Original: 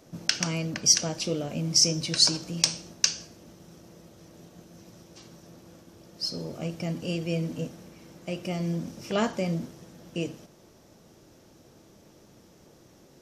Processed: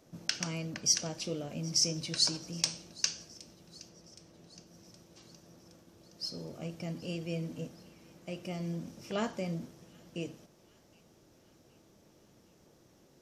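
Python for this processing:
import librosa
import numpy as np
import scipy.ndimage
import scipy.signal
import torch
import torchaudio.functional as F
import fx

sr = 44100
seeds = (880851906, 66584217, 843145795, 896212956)

p1 = fx.high_shelf(x, sr, hz=9700.0, db=-10.0, at=(3.89, 4.67))
p2 = p1 + fx.echo_wet_highpass(p1, sr, ms=768, feedback_pct=58, hz=2200.0, wet_db=-22.0, dry=0)
y = F.gain(torch.from_numpy(p2), -7.5).numpy()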